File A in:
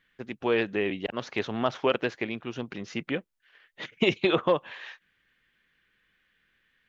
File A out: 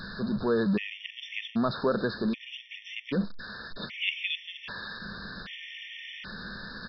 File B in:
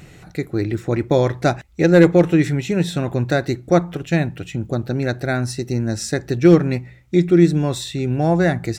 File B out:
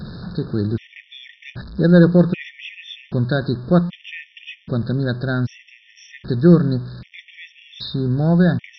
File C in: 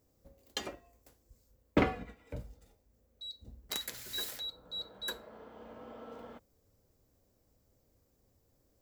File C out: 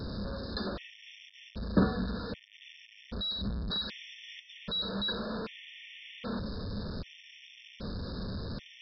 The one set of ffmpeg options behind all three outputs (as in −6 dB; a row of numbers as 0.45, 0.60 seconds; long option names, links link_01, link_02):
-af "aeval=exprs='val(0)+0.5*0.0335*sgn(val(0))':channel_layout=same,equalizer=frequency=650:width_type=o:width=1.2:gain=-3.5,aresample=11025,aeval=exprs='val(0)*gte(abs(val(0)),0.00944)':channel_layout=same,aresample=44100,equalizer=frequency=200:width_type=o:width=0.33:gain=11,equalizer=frequency=315:width_type=o:width=0.33:gain=-5,equalizer=frequency=800:width_type=o:width=0.33:gain=-8,equalizer=frequency=2000:width_type=o:width=0.33:gain=-7,afftfilt=real='re*gt(sin(2*PI*0.64*pts/sr)*(1-2*mod(floor(b*sr/1024/1800),2)),0)':imag='im*gt(sin(2*PI*0.64*pts/sr)*(1-2*mod(floor(b*sr/1024/1800),2)),0)':win_size=1024:overlap=0.75"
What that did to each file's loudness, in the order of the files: −4.0, 0.0, +2.5 LU